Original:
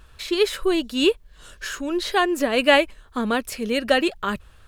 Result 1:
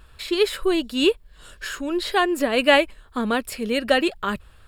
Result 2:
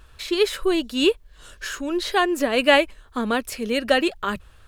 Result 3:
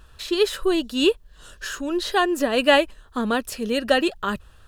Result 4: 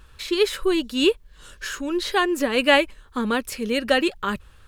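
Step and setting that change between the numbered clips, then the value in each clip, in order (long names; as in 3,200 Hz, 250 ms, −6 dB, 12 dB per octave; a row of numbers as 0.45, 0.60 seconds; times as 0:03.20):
notch filter, centre frequency: 6,100, 180, 2,200, 670 Hertz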